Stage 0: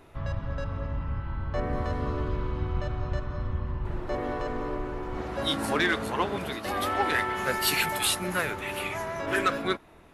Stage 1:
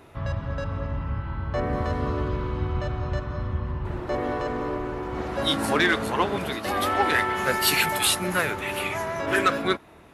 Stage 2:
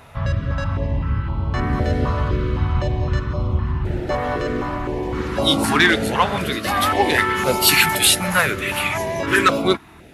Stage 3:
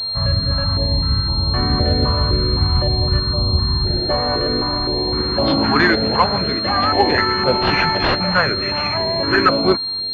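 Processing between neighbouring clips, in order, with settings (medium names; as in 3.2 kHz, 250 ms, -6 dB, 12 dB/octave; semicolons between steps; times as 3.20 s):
high-pass 53 Hz; trim +4 dB
step-sequenced notch 3.9 Hz 340–1700 Hz; trim +8 dB
class-D stage that switches slowly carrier 4.2 kHz; trim +2.5 dB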